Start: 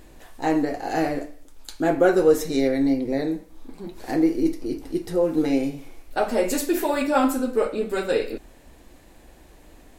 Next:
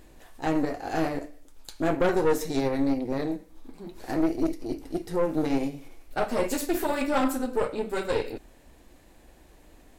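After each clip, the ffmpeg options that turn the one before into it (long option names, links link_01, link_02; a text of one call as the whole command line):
ffmpeg -i in.wav -af "aeval=exprs='(tanh(7.94*val(0)+0.75)-tanh(0.75))/7.94':channel_layout=same" out.wav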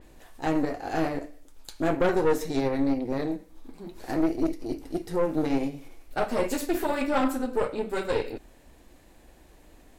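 ffmpeg -i in.wav -af "adynamicequalizer=threshold=0.00447:dfrequency=4500:dqfactor=0.7:tfrequency=4500:tqfactor=0.7:attack=5:release=100:ratio=0.375:range=2.5:mode=cutabove:tftype=highshelf" out.wav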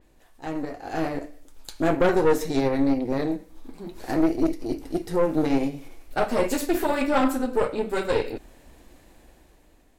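ffmpeg -i in.wav -af "dynaudnorm=framelen=400:gausssize=5:maxgain=11.5dB,volume=-7dB" out.wav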